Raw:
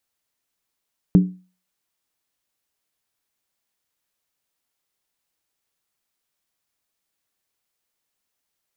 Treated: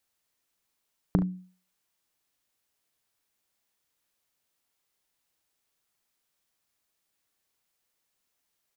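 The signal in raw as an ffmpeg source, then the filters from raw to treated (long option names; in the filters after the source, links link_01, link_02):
-f lavfi -i "aevalsrc='0.501*pow(10,-3*t/0.35)*sin(2*PI*183*t)+0.178*pow(10,-3*t/0.277)*sin(2*PI*291.7*t)+0.0631*pow(10,-3*t/0.239)*sin(2*PI*390.9*t)+0.0224*pow(10,-3*t/0.231)*sin(2*PI*420.2*t)+0.00794*pow(10,-3*t/0.215)*sin(2*PI*485.5*t)':duration=0.63:sample_rate=44100"
-af "acompressor=threshold=-23dB:ratio=6,aecho=1:1:38|70:0.251|0.211"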